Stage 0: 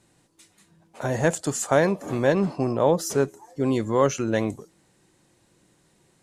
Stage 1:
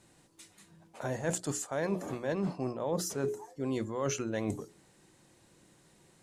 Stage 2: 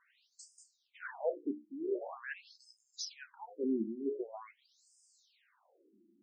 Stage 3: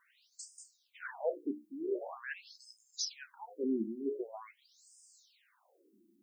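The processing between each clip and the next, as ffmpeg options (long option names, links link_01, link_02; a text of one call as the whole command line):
ffmpeg -i in.wav -af "bandreject=frequency=60:width_type=h:width=6,bandreject=frequency=120:width_type=h:width=6,bandreject=frequency=180:width_type=h:width=6,bandreject=frequency=240:width_type=h:width=6,bandreject=frequency=300:width_type=h:width=6,bandreject=frequency=360:width_type=h:width=6,bandreject=frequency=420:width_type=h:width=6,areverse,acompressor=threshold=-29dB:ratio=12,areverse" out.wav
ffmpeg -i in.wav -af "afftfilt=real='re*between(b*sr/1024,250*pow(6800/250,0.5+0.5*sin(2*PI*0.45*pts/sr))/1.41,250*pow(6800/250,0.5+0.5*sin(2*PI*0.45*pts/sr))*1.41)':imag='im*between(b*sr/1024,250*pow(6800/250,0.5+0.5*sin(2*PI*0.45*pts/sr))/1.41,250*pow(6800/250,0.5+0.5*sin(2*PI*0.45*pts/sr))*1.41)':win_size=1024:overlap=0.75,volume=2dB" out.wav
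ffmpeg -i in.wav -af "crystalizer=i=1.5:c=0" out.wav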